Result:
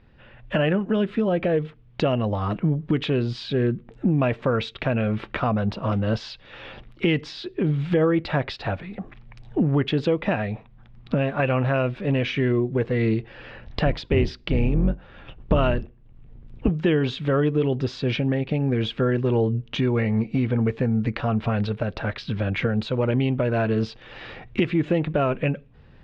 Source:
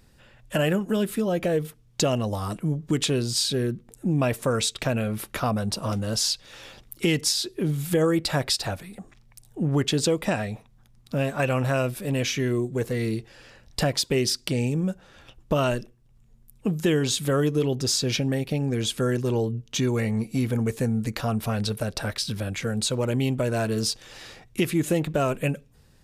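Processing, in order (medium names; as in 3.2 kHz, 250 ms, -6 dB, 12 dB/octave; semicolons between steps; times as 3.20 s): 13.85–16.69 s: octave divider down 2 oct, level +2 dB; recorder AGC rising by 13 dB/s; low-pass 3.1 kHz 24 dB/octave; trim +1.5 dB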